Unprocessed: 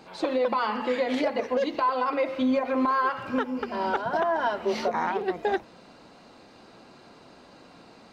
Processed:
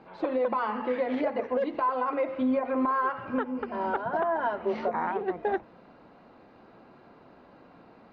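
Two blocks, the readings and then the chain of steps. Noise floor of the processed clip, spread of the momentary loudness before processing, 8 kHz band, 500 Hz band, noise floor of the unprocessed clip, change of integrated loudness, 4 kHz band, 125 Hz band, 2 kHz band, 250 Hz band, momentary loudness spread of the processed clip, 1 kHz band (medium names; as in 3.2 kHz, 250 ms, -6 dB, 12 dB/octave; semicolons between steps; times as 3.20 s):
-55 dBFS, 5 LU, no reading, -2.0 dB, -52 dBFS, -2.5 dB, -12.5 dB, -2.0 dB, -4.0 dB, -2.0 dB, 5 LU, -2.5 dB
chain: low-pass 1.9 kHz 12 dB/octave; trim -2 dB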